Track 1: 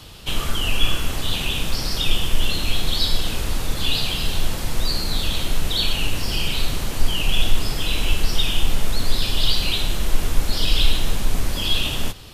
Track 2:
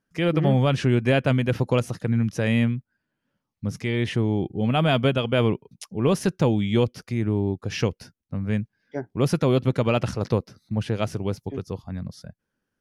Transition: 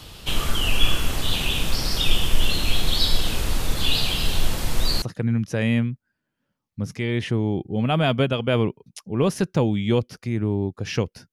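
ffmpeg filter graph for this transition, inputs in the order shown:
-filter_complex "[0:a]apad=whole_dur=11.32,atrim=end=11.32,atrim=end=5.022[s0];[1:a]atrim=start=1.868:end=8.17[s1];[s0][s1]acrossfade=d=0.004:c1=hsin:c2=hsin"

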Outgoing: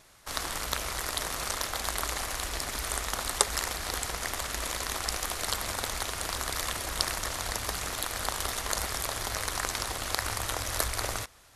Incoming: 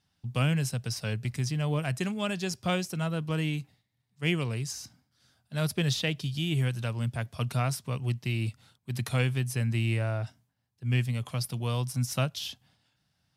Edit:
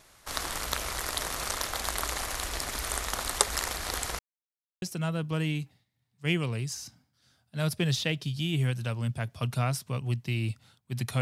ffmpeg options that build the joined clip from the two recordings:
-filter_complex "[0:a]apad=whole_dur=11.21,atrim=end=11.21,asplit=2[s0][s1];[s0]atrim=end=4.19,asetpts=PTS-STARTPTS,afade=t=out:st=4.186:d=0.004:c=hsin[s2];[s1]atrim=start=4.19:end=4.82,asetpts=PTS-STARTPTS,volume=0[s3];[1:a]atrim=start=2.8:end=9.19,asetpts=PTS-STARTPTS,afade=t=in:d=0.004:c=hsin[s4];[s2][s3][s4]concat=n=3:v=0:a=1"

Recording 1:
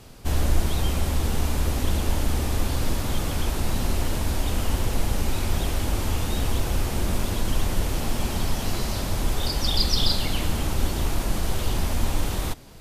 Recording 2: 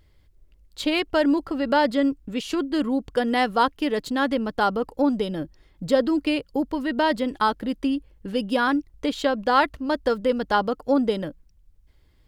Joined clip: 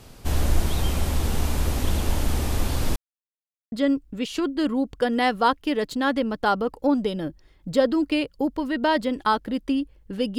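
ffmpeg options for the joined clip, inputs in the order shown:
-filter_complex "[0:a]apad=whole_dur=10.38,atrim=end=10.38,asplit=2[s0][s1];[s0]atrim=end=2.96,asetpts=PTS-STARTPTS,afade=t=out:st=2.956:d=0.004:c=hsin[s2];[s1]atrim=start=2.96:end=3.72,asetpts=PTS-STARTPTS,volume=0[s3];[1:a]atrim=start=1.87:end=8.53,asetpts=PTS-STARTPTS,afade=t=in:d=0.004:c=hsin[s4];[s2][s3][s4]concat=n=3:v=0:a=1"

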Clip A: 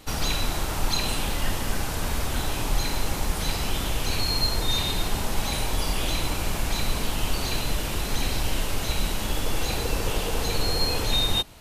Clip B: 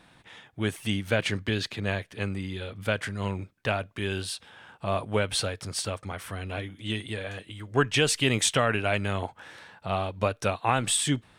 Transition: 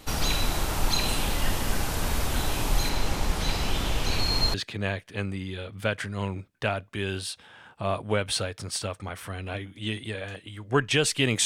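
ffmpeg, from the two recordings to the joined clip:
-filter_complex "[0:a]asettb=1/sr,asplit=3[s0][s1][s2];[s0]atrim=end=2.894[s3];[s1]atrim=start=2.89:end=4.54,asetpts=PTS-STARTPTS,afade=t=in:d=0.004:c=qsin,afade=t=out:st=1.646:d=0.004:c=qsin,acrossover=split=7000[s4][s5];[s5]acompressor=threshold=0.00562:ratio=4:attack=1:release=60[s6];[s4][s6]amix=inputs=2:normalize=0[s7];[s2]atrim=start=4.536[s8];[s3][s7]acrossfade=d=0.004:c1=hsin:c2=qsin[s9];[s9][s8]acrossfade=d=0.004:c1=qsin:c2=hsin,apad=whole_dur=11.45,atrim=end=11.45,atrim=end=4.542[s10];[1:a]atrim=start=1.568:end=8.48[s11];[s10][s11]acrossfade=d=0.004:c1=hsin:c2=hsin"

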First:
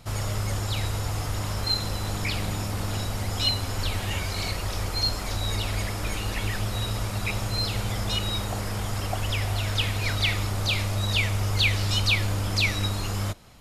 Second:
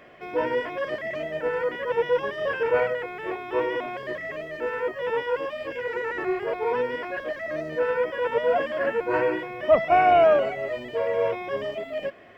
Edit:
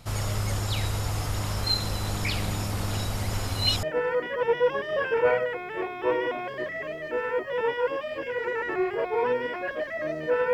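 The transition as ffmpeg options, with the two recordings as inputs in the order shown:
-filter_complex "[0:a]apad=whole_dur=10.53,atrim=end=10.53,asplit=2[s0][s1];[s0]atrim=end=3.332[s2];[s1]atrim=start=3.328:end=3.832,asetpts=PTS-STARTPTS,areverse[s3];[1:a]atrim=start=1.318:end=8.02[s4];[s2][s3]acrossfade=d=0.004:c1=hsin:c2=hsin[s5];[s5][s4]acrossfade=d=0.004:c1=hsin:c2=hsin"

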